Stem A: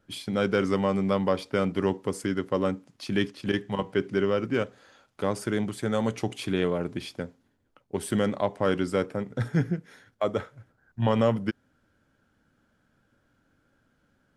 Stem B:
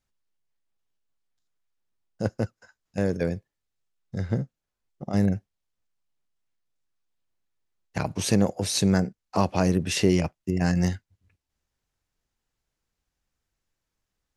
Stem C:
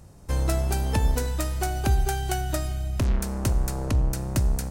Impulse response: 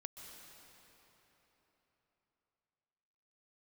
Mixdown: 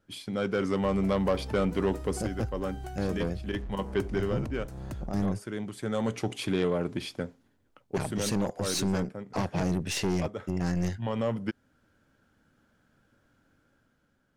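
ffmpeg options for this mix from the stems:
-filter_complex "[0:a]volume=-4dB[link_01];[1:a]aeval=exprs='(tanh(10*val(0)+0.55)-tanh(0.55))/10':channel_layout=same,volume=-6dB,asplit=2[link_02][link_03];[2:a]highshelf=frequency=2400:gain=-11,acompressor=threshold=-29dB:ratio=6,adelay=550,volume=-11.5dB[link_04];[link_03]apad=whole_len=633427[link_05];[link_01][link_05]sidechaincompress=threshold=-40dB:ratio=4:attack=24:release=1000[link_06];[link_06][link_02][link_04]amix=inputs=3:normalize=0,dynaudnorm=framelen=170:gausssize=9:maxgain=5dB,asoftclip=type=tanh:threshold=-18dB"

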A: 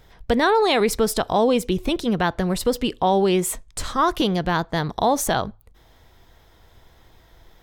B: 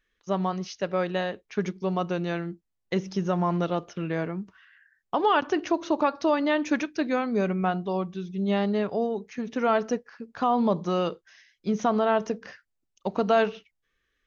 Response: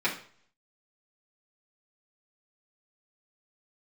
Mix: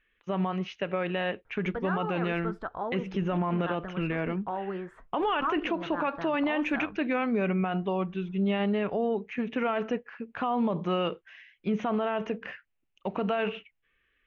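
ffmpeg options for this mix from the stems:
-filter_complex "[0:a]lowpass=frequency=1400:width_type=q:width=3.7,flanger=delay=1.7:depth=9.2:regen=64:speed=0.76:shape=triangular,adelay=1450,volume=-13dB[link_01];[1:a]highshelf=frequency=3700:width_type=q:width=3:gain=-11.5,volume=1dB[link_02];[link_01][link_02]amix=inputs=2:normalize=0,alimiter=limit=-20dB:level=0:latency=1:release=40"

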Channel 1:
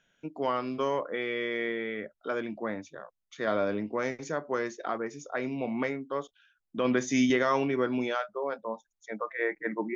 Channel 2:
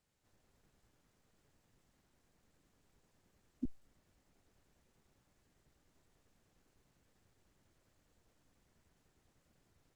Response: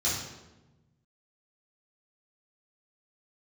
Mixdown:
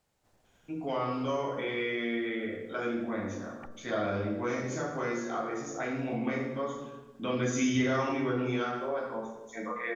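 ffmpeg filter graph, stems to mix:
-filter_complex "[0:a]adelay=450,volume=-3dB,asplit=2[link_01][link_02];[link_02]volume=-5.5dB[link_03];[1:a]equalizer=frequency=730:width=1.1:gain=6,aeval=exprs='0.0501*sin(PI/2*6.31*val(0)/0.0501)':channel_layout=same,volume=-15.5dB[link_04];[2:a]atrim=start_sample=2205[link_05];[link_03][link_05]afir=irnorm=-1:irlink=0[link_06];[link_01][link_04][link_06]amix=inputs=3:normalize=0,acompressor=threshold=-33dB:ratio=1.5"

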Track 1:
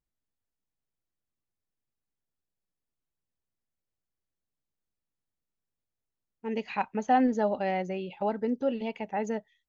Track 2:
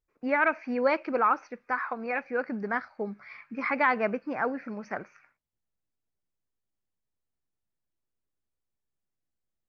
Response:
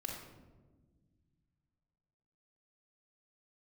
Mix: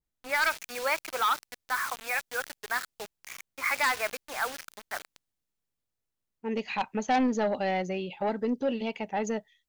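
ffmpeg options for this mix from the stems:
-filter_complex "[0:a]volume=-4dB[link_01];[1:a]highpass=810,acrusher=bits=6:mix=0:aa=0.000001,volume=-4.5dB[link_02];[link_01][link_02]amix=inputs=2:normalize=0,aeval=exprs='0.15*(cos(1*acos(clip(val(0)/0.15,-1,1)))-cos(1*PI/2))+0.0266*(cos(5*acos(clip(val(0)/0.15,-1,1)))-cos(5*PI/2))':channel_layout=same,adynamicequalizer=threshold=0.00708:dfrequency=2300:dqfactor=0.7:tfrequency=2300:tqfactor=0.7:attack=5:release=100:ratio=0.375:range=3.5:mode=boostabove:tftype=highshelf"

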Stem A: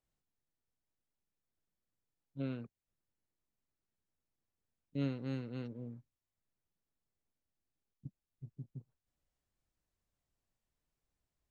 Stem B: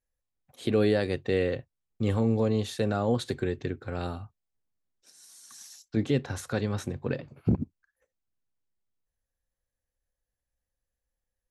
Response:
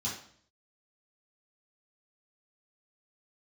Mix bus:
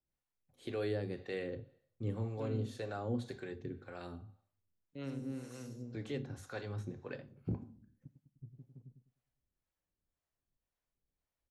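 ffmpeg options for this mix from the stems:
-filter_complex "[0:a]highshelf=frequency=4300:gain=-10,volume=-0.5dB,asplit=3[link_01][link_02][link_03];[link_02]volume=-21dB[link_04];[link_03]volume=-7dB[link_05];[1:a]volume=-9dB,asplit=2[link_06][link_07];[link_07]volume=-12dB[link_08];[2:a]atrim=start_sample=2205[link_09];[link_04][link_08]amix=inputs=2:normalize=0[link_10];[link_10][link_09]afir=irnorm=-1:irlink=0[link_11];[link_05]aecho=0:1:101|202|303|404|505|606:1|0.41|0.168|0.0689|0.0283|0.0116[link_12];[link_01][link_06][link_11][link_12]amix=inputs=4:normalize=0,acrossover=split=470[link_13][link_14];[link_13]aeval=exprs='val(0)*(1-0.7/2+0.7/2*cos(2*PI*1.9*n/s))':channel_layout=same[link_15];[link_14]aeval=exprs='val(0)*(1-0.7/2-0.7/2*cos(2*PI*1.9*n/s))':channel_layout=same[link_16];[link_15][link_16]amix=inputs=2:normalize=0"

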